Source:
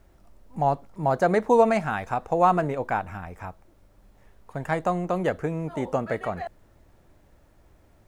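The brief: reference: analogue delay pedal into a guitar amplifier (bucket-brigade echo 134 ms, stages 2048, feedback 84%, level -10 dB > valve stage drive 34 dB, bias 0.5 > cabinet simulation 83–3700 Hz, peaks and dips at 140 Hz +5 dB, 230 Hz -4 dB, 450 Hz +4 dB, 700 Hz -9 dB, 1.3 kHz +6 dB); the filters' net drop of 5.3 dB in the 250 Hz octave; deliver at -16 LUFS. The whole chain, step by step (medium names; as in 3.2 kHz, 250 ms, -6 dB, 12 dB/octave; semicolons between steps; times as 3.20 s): peaking EQ 250 Hz -8 dB; bucket-brigade echo 134 ms, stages 2048, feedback 84%, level -10 dB; valve stage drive 34 dB, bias 0.5; cabinet simulation 83–3700 Hz, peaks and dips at 140 Hz +5 dB, 230 Hz -4 dB, 450 Hz +4 dB, 700 Hz -9 dB, 1.3 kHz +6 dB; trim +21.5 dB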